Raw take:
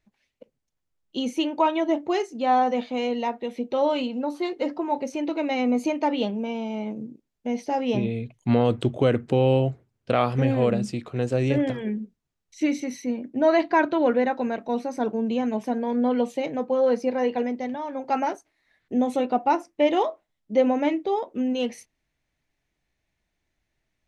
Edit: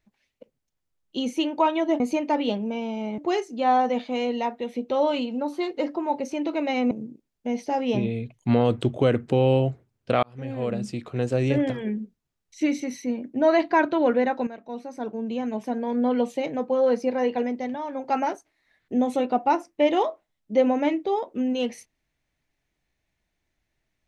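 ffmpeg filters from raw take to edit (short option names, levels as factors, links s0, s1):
-filter_complex "[0:a]asplit=6[s0][s1][s2][s3][s4][s5];[s0]atrim=end=2.002[s6];[s1]atrim=start=5.728:end=6.912[s7];[s2]atrim=start=1.998:end=5.732[s8];[s3]atrim=start=6.908:end=10.23,asetpts=PTS-STARTPTS,afade=t=out:st=3.318:d=0.004:c=hsin[s9];[s4]atrim=start=10.23:end=14.47,asetpts=PTS-STARTPTS,afade=t=in:d=0.87,afade=t=out:st=4.236:d=0.004:c=hsin:silence=0.251189[s10];[s5]atrim=start=14.47,asetpts=PTS-STARTPTS,afade=t=in:d=1.67:silence=0.251189[s11];[s6][s7]acrossfade=d=0.004:c1=hsin:c2=hsin[s12];[s12][s8]acrossfade=d=0.004:c1=hsin:c2=hsin[s13];[s9][s10][s11]concat=n=3:v=0:a=1[s14];[s13][s14]acrossfade=d=0.004:c1=hsin:c2=hsin"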